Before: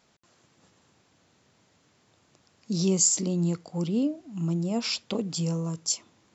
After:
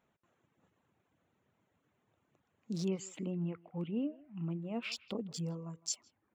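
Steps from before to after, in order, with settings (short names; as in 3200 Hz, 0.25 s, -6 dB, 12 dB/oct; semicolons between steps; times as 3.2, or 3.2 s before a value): Wiener smoothing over 9 samples; 2.88–4.92 resonant high shelf 3900 Hz -12.5 dB, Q 3; reverb removal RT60 0.79 s; speakerphone echo 0.16 s, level -20 dB; gain -9 dB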